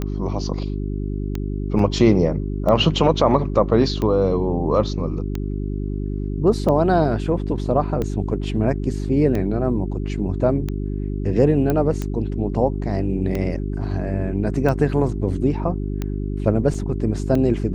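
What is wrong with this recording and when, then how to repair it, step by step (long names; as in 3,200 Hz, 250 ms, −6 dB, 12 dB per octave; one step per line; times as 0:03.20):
mains hum 50 Hz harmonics 8 −25 dBFS
scratch tick 45 rpm −13 dBFS
0:01.79: drop-out 2.8 ms
0:11.70: click −9 dBFS
0:16.74: drop-out 4.4 ms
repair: click removal
hum removal 50 Hz, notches 8
repair the gap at 0:01.79, 2.8 ms
repair the gap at 0:16.74, 4.4 ms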